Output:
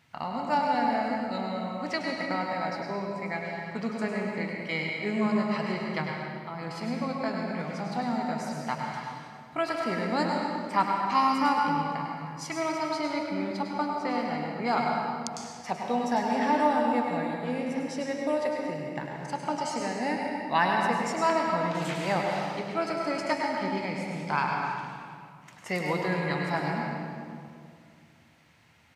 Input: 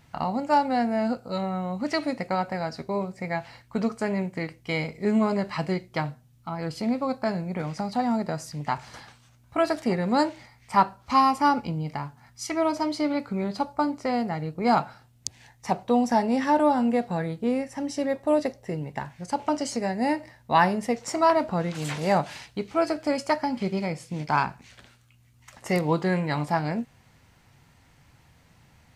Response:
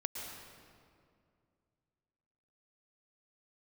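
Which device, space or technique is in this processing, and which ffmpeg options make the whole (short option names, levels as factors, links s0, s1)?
PA in a hall: -filter_complex "[0:a]highpass=100,equalizer=f=2400:t=o:w=2.2:g=7,aecho=1:1:101:0.398[s0];[1:a]atrim=start_sample=2205[s1];[s0][s1]afir=irnorm=-1:irlink=0,volume=0.473"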